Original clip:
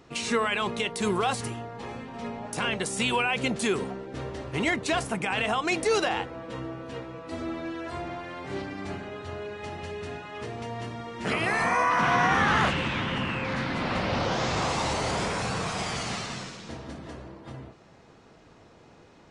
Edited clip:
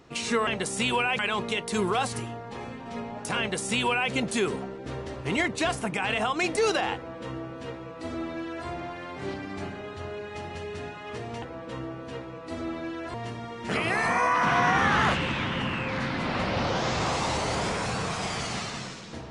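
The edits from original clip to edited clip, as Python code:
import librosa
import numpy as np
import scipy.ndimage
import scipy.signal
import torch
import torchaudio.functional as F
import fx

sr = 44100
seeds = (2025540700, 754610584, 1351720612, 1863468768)

y = fx.edit(x, sr, fx.duplicate(start_s=2.67, length_s=0.72, to_s=0.47),
    fx.duplicate(start_s=6.23, length_s=1.72, to_s=10.7), tone=tone)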